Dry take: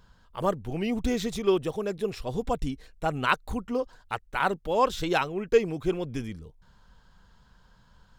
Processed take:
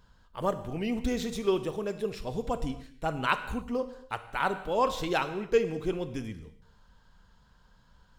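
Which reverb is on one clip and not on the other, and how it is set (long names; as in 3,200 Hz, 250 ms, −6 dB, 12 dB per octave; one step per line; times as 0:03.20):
reverb whose tail is shaped and stops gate 310 ms falling, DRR 9.5 dB
level −3 dB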